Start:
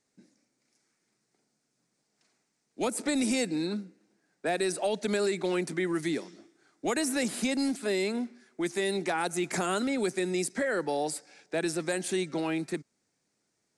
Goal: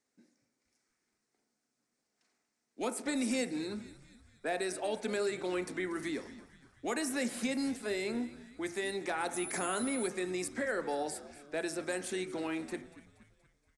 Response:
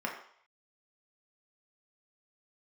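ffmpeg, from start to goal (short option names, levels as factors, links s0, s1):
-filter_complex "[0:a]asplit=6[s0][s1][s2][s3][s4][s5];[s1]adelay=237,afreqshift=-71,volume=0.141[s6];[s2]adelay=474,afreqshift=-142,volume=0.0759[s7];[s3]adelay=711,afreqshift=-213,volume=0.0412[s8];[s4]adelay=948,afreqshift=-284,volume=0.0221[s9];[s5]adelay=1185,afreqshift=-355,volume=0.012[s10];[s0][s6][s7][s8][s9][s10]amix=inputs=6:normalize=0,asettb=1/sr,asplit=3[s11][s12][s13];[s11]atrim=end=9.344[s14];[s12]atrim=start=9.34:end=10.08,asetpts=PTS-STARTPTS,afade=t=in:d=0.004:c=qsin,afade=t=out:st=0.736:d=0.004:c=qsin,aeval=exprs='val(0)+0.0178*sin(2*PI*10000*n/s)':c=same[s15];[s13]atrim=start=10.076[s16];[s14][s15]acrossfade=d=0.004:c1=hsin:c2=qsin[s17];[s17][s16]acrossfade=d=0.004:c1=qsin:c2=hsin,asplit=2[s18][s19];[1:a]atrim=start_sample=2205[s20];[s19][s20]afir=irnorm=-1:irlink=0,volume=0.316[s21];[s18][s21]amix=inputs=2:normalize=0,volume=0.422"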